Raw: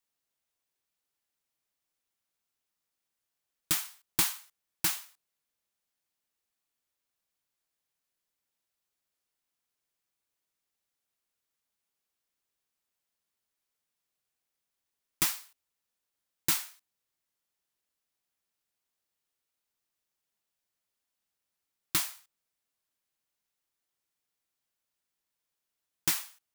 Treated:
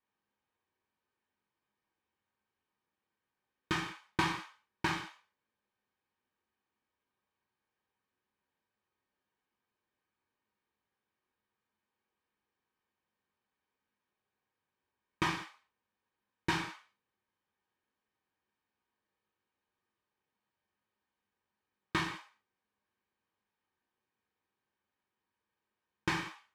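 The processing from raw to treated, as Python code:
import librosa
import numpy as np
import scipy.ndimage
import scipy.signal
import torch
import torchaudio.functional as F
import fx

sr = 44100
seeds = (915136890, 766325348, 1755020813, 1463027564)

y = scipy.signal.sosfilt(scipy.signal.butter(2, 2000.0, 'lowpass', fs=sr, output='sos'), x)
y = fx.notch_comb(y, sr, f0_hz=680.0)
y = fx.rev_gated(y, sr, seeds[0], gate_ms=220, shape='falling', drr_db=0.5)
y = y * librosa.db_to_amplitude(5.0)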